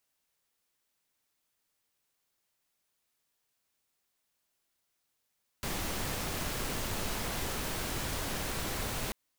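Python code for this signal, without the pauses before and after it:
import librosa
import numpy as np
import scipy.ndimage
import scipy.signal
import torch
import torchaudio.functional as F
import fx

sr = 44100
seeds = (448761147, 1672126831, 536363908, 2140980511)

y = fx.noise_colour(sr, seeds[0], length_s=3.49, colour='pink', level_db=-35.0)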